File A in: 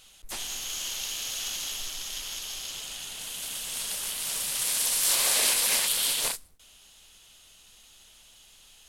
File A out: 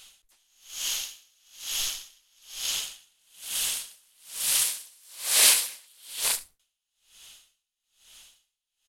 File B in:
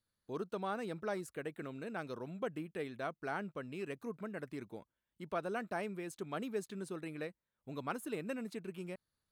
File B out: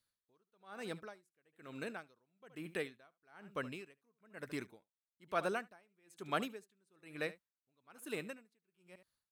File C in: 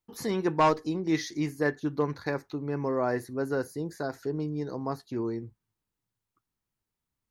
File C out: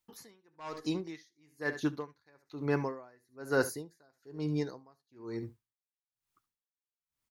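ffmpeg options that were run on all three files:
-filter_complex "[0:a]tiltshelf=f=840:g=-4.5,dynaudnorm=f=170:g=21:m=5dB,asplit=2[a][b];[b]asoftclip=type=tanh:threshold=-10.5dB,volume=-5.5dB[c];[a][c]amix=inputs=2:normalize=0,aecho=1:1:72:0.141,aeval=exprs='val(0)*pow(10,-38*(0.5-0.5*cos(2*PI*1.1*n/s))/20)':c=same,volume=-3dB"

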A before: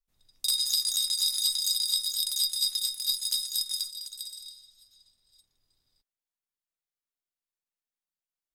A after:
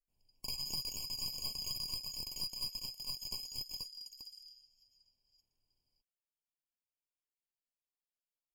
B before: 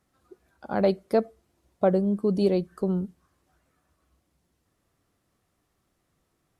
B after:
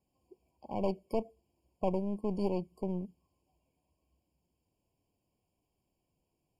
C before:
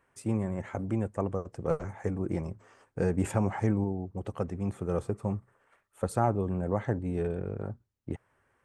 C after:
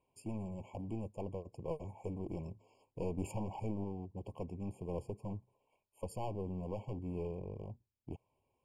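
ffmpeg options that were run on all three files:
-af "aeval=exprs='clip(val(0),-1,0.0237)':c=same,afftfilt=real='re*eq(mod(floor(b*sr/1024/1100),2),0)':imag='im*eq(mod(floor(b*sr/1024/1100),2),0)':win_size=1024:overlap=0.75,volume=-7.5dB"

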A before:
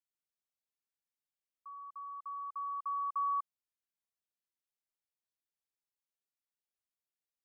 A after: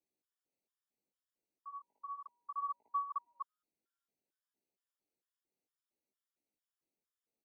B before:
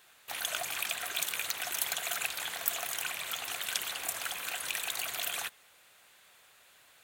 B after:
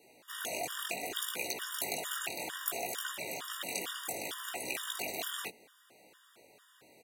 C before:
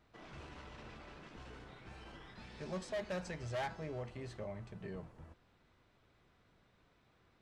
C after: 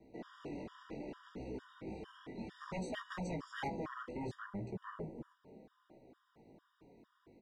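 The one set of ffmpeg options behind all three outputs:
-filter_complex "[0:a]flanger=delay=15.5:depth=6.7:speed=0.65,acrossover=split=220|460|4400[a][b][c][d];[a]asplit=9[e][f][g][h][i][j][k][l][m];[f]adelay=327,afreqshift=130,volume=-7dB[n];[g]adelay=654,afreqshift=260,volume=-11.6dB[o];[h]adelay=981,afreqshift=390,volume=-16.2dB[p];[i]adelay=1308,afreqshift=520,volume=-20.7dB[q];[j]adelay=1635,afreqshift=650,volume=-25.3dB[r];[k]adelay=1962,afreqshift=780,volume=-29.9dB[s];[l]adelay=2289,afreqshift=910,volume=-34.5dB[t];[m]adelay=2616,afreqshift=1040,volume=-39.1dB[u];[e][n][o][p][q][r][s][t][u]amix=inputs=9:normalize=0[v];[b]aeval=exprs='0.00891*sin(PI/2*5.62*val(0)/0.00891)':c=same[w];[v][w][c][d]amix=inputs=4:normalize=0,afftfilt=real='re*gt(sin(2*PI*2.2*pts/sr)*(1-2*mod(floor(b*sr/1024/950),2)),0)':imag='im*gt(sin(2*PI*2.2*pts/sr)*(1-2*mod(floor(b*sr/1024/950),2)),0)':win_size=1024:overlap=0.75,volume=2.5dB"

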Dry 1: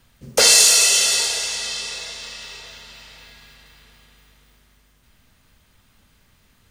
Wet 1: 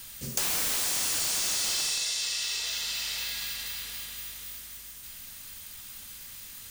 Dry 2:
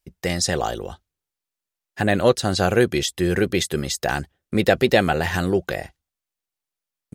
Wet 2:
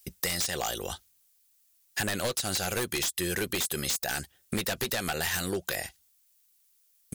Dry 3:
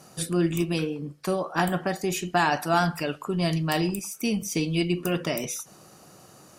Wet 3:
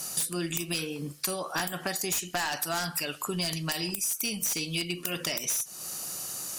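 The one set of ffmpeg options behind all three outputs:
-af "crystalizer=i=9:c=0,volume=-11.5dB,asoftclip=hard,volume=11.5dB,alimiter=limit=0dB:level=0:latency=1:release=170,aeval=exprs='0.316*(abs(mod(val(0)/0.316+3,4)-2)-1)':c=same,acompressor=threshold=-29dB:ratio=5"

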